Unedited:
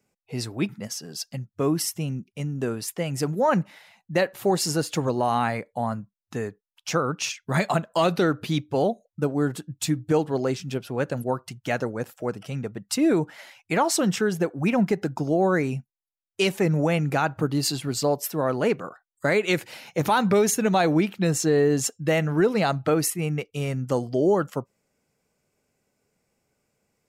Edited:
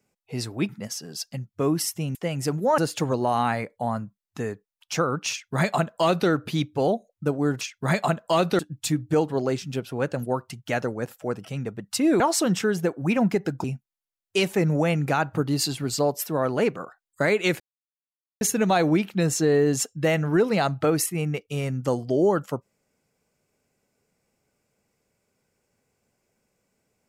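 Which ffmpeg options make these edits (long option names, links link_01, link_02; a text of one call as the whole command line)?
ffmpeg -i in.wav -filter_complex "[0:a]asplit=9[link_01][link_02][link_03][link_04][link_05][link_06][link_07][link_08][link_09];[link_01]atrim=end=2.152[link_10];[link_02]atrim=start=2.898:end=3.532[link_11];[link_03]atrim=start=4.738:end=9.572[link_12];[link_04]atrim=start=7.268:end=8.252[link_13];[link_05]atrim=start=9.568:end=13.182[link_14];[link_06]atrim=start=13.768:end=15.212[link_15];[link_07]atrim=start=15.678:end=19.64,asetpts=PTS-STARTPTS,afade=type=out:start_time=3.958:duration=0.004:curve=hsin[link_16];[link_08]atrim=start=19.64:end=20.45,asetpts=PTS-STARTPTS,volume=0[link_17];[link_09]atrim=start=20.45,asetpts=PTS-STARTPTS,afade=type=in:duration=0.004:curve=hsin[link_18];[link_10][link_11]acrossfade=duration=0.004:curve1=hsin:curve2=hsin[link_19];[link_19][link_12]acrossfade=duration=0.004:curve1=hsin:curve2=hsin[link_20];[link_20][link_13]acrossfade=duration=0.004:curve1=hsin:curve2=hsin[link_21];[link_21][link_14]acrossfade=duration=0.004:curve1=hsin:curve2=hsin[link_22];[link_22][link_15]acrossfade=duration=0.004:curve1=hsin:curve2=hsin[link_23];[link_16][link_17][link_18]concat=n=3:v=0:a=1[link_24];[link_23][link_24]acrossfade=duration=0.004:curve1=hsin:curve2=hsin" out.wav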